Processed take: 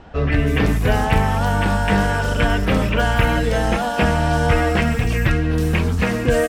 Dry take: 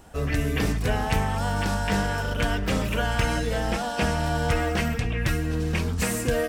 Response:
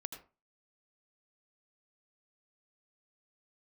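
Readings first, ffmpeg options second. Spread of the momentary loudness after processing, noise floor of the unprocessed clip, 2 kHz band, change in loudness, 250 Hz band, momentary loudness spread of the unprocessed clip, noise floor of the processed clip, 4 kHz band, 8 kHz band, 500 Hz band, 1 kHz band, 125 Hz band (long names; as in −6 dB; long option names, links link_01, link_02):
2 LU, −29 dBFS, +7.0 dB, +7.0 dB, +7.5 dB, 2 LU, −23 dBFS, +4.5 dB, 0.0 dB, +7.5 dB, +7.5 dB, +7.5 dB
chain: -filter_complex "[0:a]acrossover=split=4100[link_01][link_02];[link_02]acompressor=threshold=-43dB:ratio=4:attack=1:release=60[link_03];[link_01][link_03]amix=inputs=2:normalize=0,acrossover=split=4500[link_04][link_05];[link_05]adelay=320[link_06];[link_04][link_06]amix=inputs=2:normalize=0,volume=7.5dB"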